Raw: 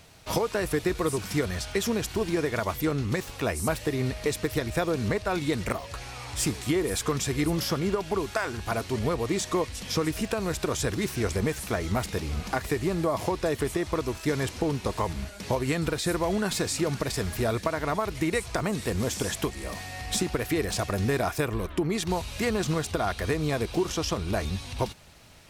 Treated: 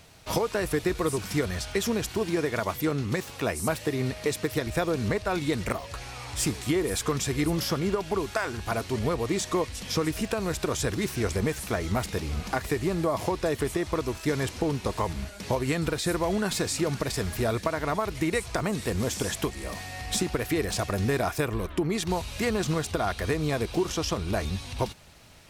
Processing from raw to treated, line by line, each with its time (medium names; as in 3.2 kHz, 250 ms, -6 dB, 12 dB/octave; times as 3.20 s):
2.10–4.67 s: high-pass 90 Hz